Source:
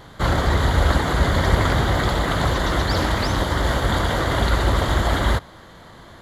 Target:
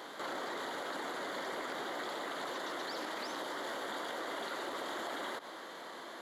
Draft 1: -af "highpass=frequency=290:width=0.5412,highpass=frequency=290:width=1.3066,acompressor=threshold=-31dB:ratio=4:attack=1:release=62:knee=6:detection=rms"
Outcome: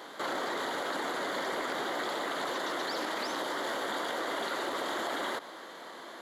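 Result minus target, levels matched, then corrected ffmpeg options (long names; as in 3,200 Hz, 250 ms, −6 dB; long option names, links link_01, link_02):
downward compressor: peak gain reduction −6 dB
-af "highpass=frequency=290:width=0.5412,highpass=frequency=290:width=1.3066,acompressor=threshold=-39dB:ratio=4:attack=1:release=62:knee=6:detection=rms"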